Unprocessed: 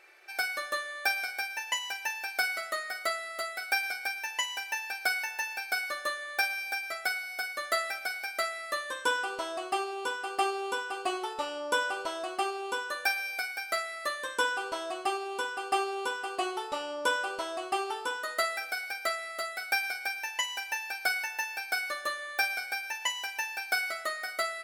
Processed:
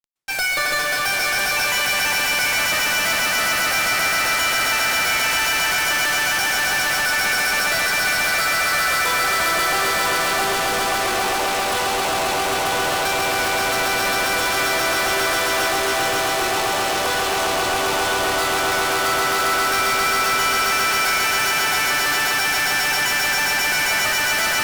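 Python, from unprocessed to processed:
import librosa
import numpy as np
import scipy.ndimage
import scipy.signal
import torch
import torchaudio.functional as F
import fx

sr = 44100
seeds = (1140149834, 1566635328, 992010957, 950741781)

y = fx.echo_swell(x, sr, ms=134, loudest=8, wet_db=-4.5)
y = fx.fuzz(y, sr, gain_db=46.0, gate_db=-46.0)
y = fx.rev_plate(y, sr, seeds[0], rt60_s=0.88, hf_ratio=0.75, predelay_ms=110, drr_db=7.5)
y = y * 10.0 ** (-6.5 / 20.0)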